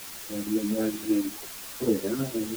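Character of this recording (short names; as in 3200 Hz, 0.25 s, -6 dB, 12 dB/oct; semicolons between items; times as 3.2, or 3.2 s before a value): chopped level 6.4 Hz, depth 60%, duty 70%; a quantiser's noise floor 6-bit, dither triangular; a shimmering, thickened sound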